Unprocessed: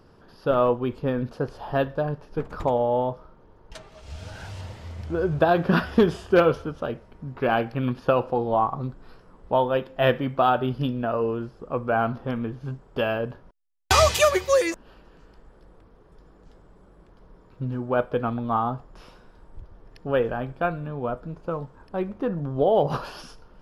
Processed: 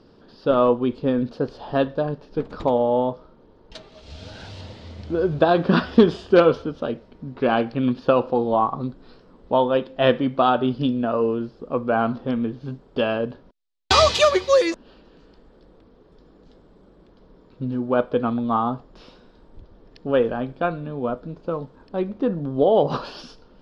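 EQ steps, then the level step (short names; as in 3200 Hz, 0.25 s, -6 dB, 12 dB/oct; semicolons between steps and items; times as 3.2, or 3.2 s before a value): LPF 6600 Hz 12 dB/oct; dynamic EQ 1100 Hz, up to +5 dB, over -35 dBFS, Q 1.9; graphic EQ 250/500/4000 Hz +9/+5/+11 dB; -3.5 dB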